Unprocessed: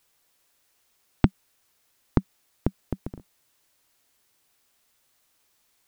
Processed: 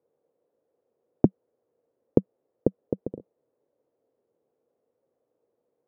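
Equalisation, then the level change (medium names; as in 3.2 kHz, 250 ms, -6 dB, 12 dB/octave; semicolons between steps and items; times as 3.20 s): high-pass 140 Hz 12 dB/octave; resonant low-pass 490 Hz, resonance Q 4.9; 0.0 dB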